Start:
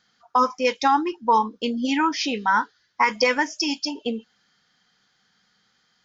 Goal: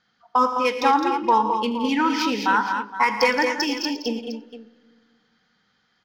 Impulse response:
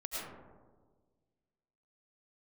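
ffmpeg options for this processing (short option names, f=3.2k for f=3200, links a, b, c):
-filter_complex "[0:a]adynamicsmooth=sensitivity=2:basefreq=4.5k,aecho=1:1:43|79|113|170|210|467:0.133|0.15|0.211|0.224|0.473|0.2,asplit=2[a][b];[1:a]atrim=start_sample=2205,asetrate=39690,aresample=44100,adelay=93[c];[b][c]afir=irnorm=-1:irlink=0,volume=-23.5dB[d];[a][d]amix=inputs=2:normalize=0"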